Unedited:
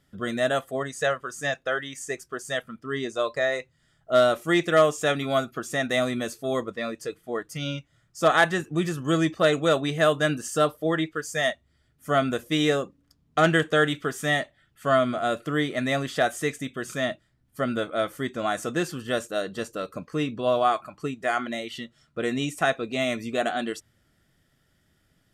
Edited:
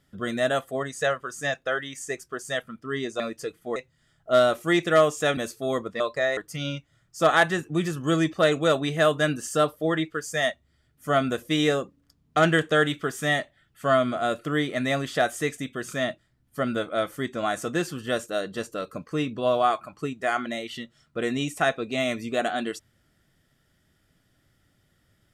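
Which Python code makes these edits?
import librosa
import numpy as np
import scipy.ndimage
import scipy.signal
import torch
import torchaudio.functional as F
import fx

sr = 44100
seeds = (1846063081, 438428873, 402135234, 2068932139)

y = fx.edit(x, sr, fx.swap(start_s=3.2, length_s=0.37, other_s=6.82, other_length_s=0.56),
    fx.cut(start_s=5.18, length_s=1.01), tone=tone)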